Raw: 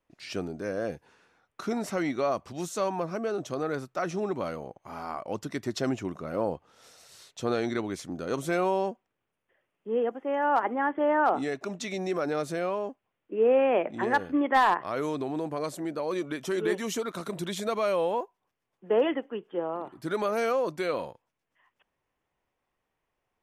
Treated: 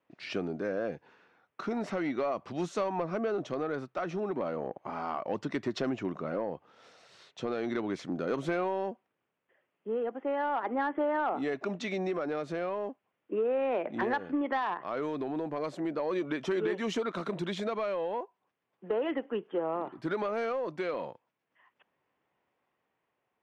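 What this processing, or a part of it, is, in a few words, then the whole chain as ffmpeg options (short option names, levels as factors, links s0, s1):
AM radio: -filter_complex "[0:a]asettb=1/sr,asplit=3[s0][s1][s2];[s0]atrim=end=4.364[s3];[s1]atrim=start=4.36:end=4.9,asetpts=PTS-STARTPTS,afade=t=in:d=0.004:c=qsin,afade=t=out:st=0.536:d=0.004:c=qsin,equalizer=f=420:w=0.35:g=7[s4];[s2]atrim=start=4.896[s5];[s3][s4]acrossfade=d=0.004:c1=hsin:c2=qsin[s6];[s6][s5]acrossfade=d=0.004:c1=qsin:c2=hsin,highpass=140,lowpass=3300,acompressor=threshold=0.0355:ratio=8,asoftclip=type=tanh:threshold=0.0668,tremolo=f=0.36:d=0.28,volume=1.5"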